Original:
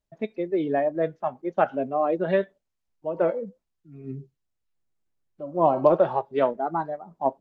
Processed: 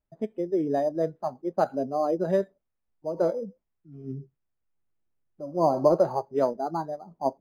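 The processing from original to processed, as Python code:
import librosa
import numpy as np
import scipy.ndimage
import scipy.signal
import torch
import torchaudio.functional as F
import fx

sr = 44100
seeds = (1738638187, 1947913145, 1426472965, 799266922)

y = fx.peak_eq(x, sr, hz=3500.0, db=-12.0, octaves=2.5)
y = np.interp(np.arange(len(y)), np.arange(len(y))[::8], y[::8])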